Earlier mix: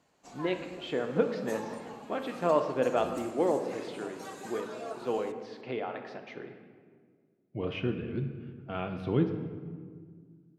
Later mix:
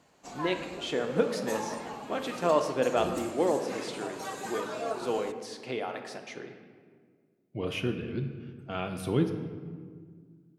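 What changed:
speech: remove air absorption 270 m; background +6.5 dB

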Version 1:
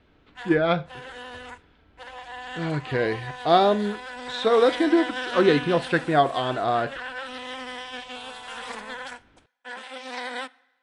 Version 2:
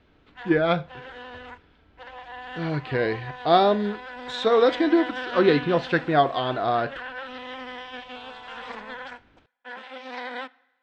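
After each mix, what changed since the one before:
background: add air absorption 190 m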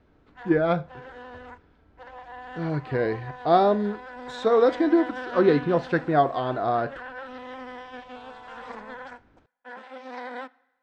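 master: add bell 3100 Hz -10.5 dB 1.4 oct

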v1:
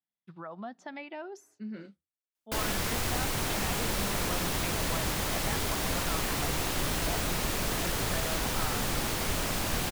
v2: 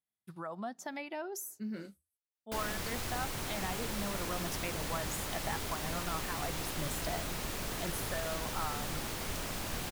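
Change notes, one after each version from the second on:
speech: remove Chebyshev band-pass 150–3300 Hz, order 2; background -7.5 dB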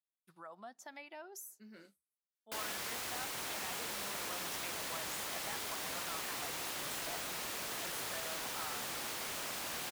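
speech -6.5 dB; master: add HPF 680 Hz 6 dB/oct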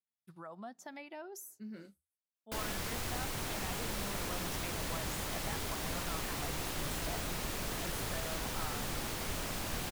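master: remove HPF 680 Hz 6 dB/oct

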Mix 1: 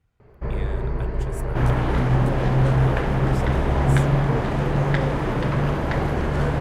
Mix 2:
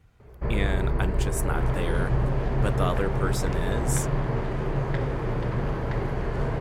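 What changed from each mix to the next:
speech +11.0 dB; second sound -10.0 dB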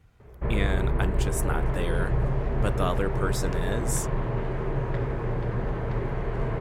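first sound: add steep low-pass 4000 Hz 48 dB/oct; second sound -7.0 dB

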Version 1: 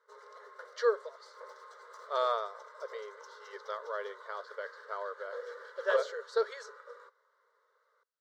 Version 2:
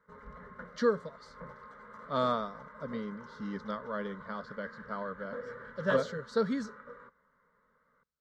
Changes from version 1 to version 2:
background: add resonant high shelf 3300 Hz -12 dB, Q 1.5; master: remove brick-wall FIR high-pass 380 Hz

